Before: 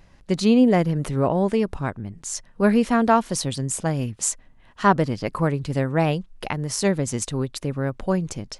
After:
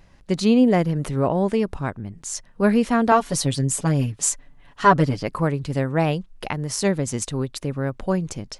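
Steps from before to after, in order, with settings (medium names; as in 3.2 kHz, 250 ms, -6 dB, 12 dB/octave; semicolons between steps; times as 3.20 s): 3.11–5.23 s: comb 7 ms, depth 83%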